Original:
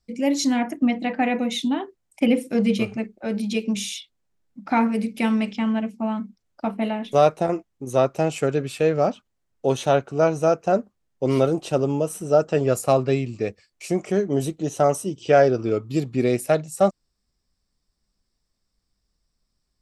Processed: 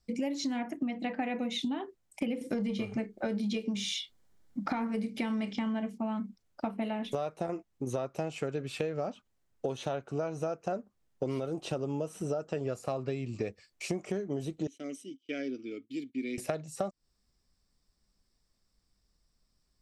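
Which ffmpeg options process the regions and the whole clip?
-filter_complex "[0:a]asettb=1/sr,asplit=3[s0][s1][s2];[s0]atrim=end=2.414[s3];[s1]atrim=start=2.41:end=5.98,asetpts=PTS-STARTPTS,afade=t=in:d=0.004:c=qsin,afade=t=out:st=3.566:d=0.004:c=qsin,bandreject=f=2600:w=9,acontrast=79,asplit=2[s4][s5];[s5]adelay=29,volume=0.2[s6];[s4][s6]amix=inputs=2:normalize=0,atrim=end_sample=157437[s7];[s2]atrim=start=5.976[s8];[s3][s7]acrossfade=d=0.004:c1=hsin:c2=qsin[s9];[s9][s8]acrossfade=d=0.004:c1=qsin:c2=hsin,asettb=1/sr,asplit=3[s10][s11][s12];[s10]atrim=end=14.674[s13];[s11]atrim=start=14.67:end=16.38,asetpts=PTS-STARTPTS,afade=t=in:d=0.004:c=qsin,afade=t=out:st=1.706:d=0.004:c=qsin,agate=range=0.0562:threshold=0.0126:ratio=16:release=100:detection=peak,asplit=3[s14][s15][s16];[s14]bandpass=f=270:t=q:w=8,volume=1[s17];[s15]bandpass=f=2290:t=q:w=8,volume=0.501[s18];[s16]bandpass=f=3010:t=q:w=8,volume=0.355[s19];[s17][s18][s19]amix=inputs=3:normalize=0,bass=f=250:g=-11,treble=f=4000:g=11[s20];[s12]atrim=start=16.376[s21];[s13][s20]acrossfade=d=0.004:c1=hsin:c2=qsin[s22];[s22][s21]acrossfade=d=0.004:c1=qsin:c2=hsin,acrossover=split=5900[s23][s24];[s24]acompressor=threshold=0.00398:ratio=4:attack=1:release=60[s25];[s23][s25]amix=inputs=2:normalize=0,alimiter=limit=0.266:level=0:latency=1:release=191,acompressor=threshold=0.0316:ratio=10"

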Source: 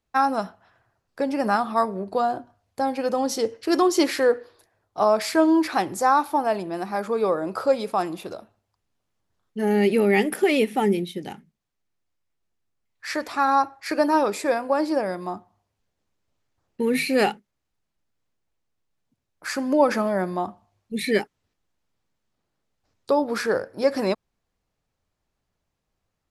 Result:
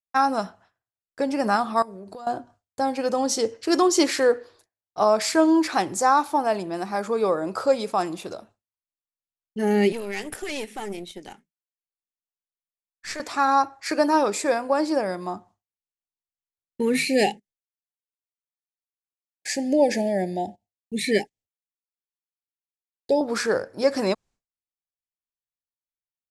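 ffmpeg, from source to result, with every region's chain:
-filter_complex "[0:a]asettb=1/sr,asplit=3[s0][s1][s2];[s0]atrim=end=1.824[s3];[s1]atrim=start=1.82:end=2.27,asetpts=PTS-STARTPTS,afade=t=in:d=0.004:c=qsin,afade=t=out:st=0.446:d=0.004:c=qsin,highshelf=f=7200:g=8.5,acompressor=threshold=0.0158:ratio=8:attack=3.2:release=140:knee=1:detection=peak[s4];[s2]atrim=start=2.266[s5];[s3][s4]acrossfade=d=0.004:c1=hsin:c2=qsin[s6];[s6][s5]acrossfade=d=0.004:c1=qsin:c2=hsin,asettb=1/sr,asplit=3[s7][s8][s9];[s7]atrim=end=9.924[s10];[s8]atrim=start=9.92:end=13.2,asetpts=PTS-STARTPTS,afade=t=in:d=0.004:c=qsin,afade=t=out:st=3.276:d=0.004:c=qsin,equalizer=f=120:w=0.77:g=-13,acrossover=split=120|3000[s11][s12][s13];[s12]acompressor=threshold=0.0447:ratio=2.5:attack=3.2:release=140:knee=2.83:detection=peak[s14];[s11][s14][s13]amix=inputs=3:normalize=0,aeval=exprs='(tanh(14.1*val(0)+0.75)-tanh(0.75))/14.1':c=same[s15];[s9]atrim=start=13.196[s16];[s10][s15]acrossfade=d=0.004:c1=hsin:c2=qsin[s17];[s17][s16]acrossfade=d=0.004:c1=qsin:c2=hsin,asettb=1/sr,asplit=3[s18][s19][s20];[s18]atrim=end=17.044[s21];[s19]atrim=start=17.04:end=23.21,asetpts=PTS-STARTPTS,afade=t=in:d=0.004:c=qsin,afade=t=out:st=6.166:d=0.004:c=qsin,asuperstop=centerf=1200:order=12:qfactor=1.4,agate=range=0.141:threshold=0.00355:ratio=16:release=100:detection=peak[s22];[s20]atrim=start=23.206[s23];[s21][s22]acrossfade=d=0.004:c1=hsin:c2=qsin[s24];[s24][s23]acrossfade=d=0.004:c1=qsin:c2=hsin,agate=range=0.0224:threshold=0.00447:ratio=3:detection=peak,lowpass=9800,equalizer=f=7500:t=o:w=1:g=8"

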